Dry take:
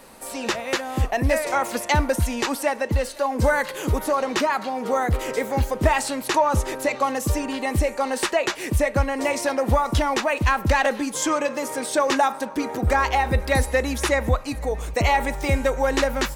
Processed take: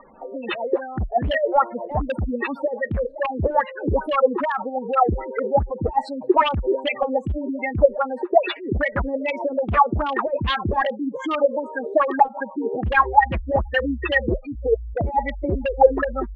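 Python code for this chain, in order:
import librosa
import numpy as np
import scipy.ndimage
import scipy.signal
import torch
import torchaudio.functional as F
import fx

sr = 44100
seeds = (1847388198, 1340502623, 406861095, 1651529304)

y = fx.spec_gate(x, sr, threshold_db=-10, keep='strong')
y = 10.0 ** (-16.5 / 20.0) * (np.abs((y / 10.0 ** (-16.5 / 20.0) + 3.0) % 4.0 - 2.0) - 1.0)
y = fx.filter_lfo_lowpass(y, sr, shape='sine', hz=2.5, low_hz=380.0, high_hz=3300.0, q=6.8)
y = y * librosa.db_to_amplitude(-1.5)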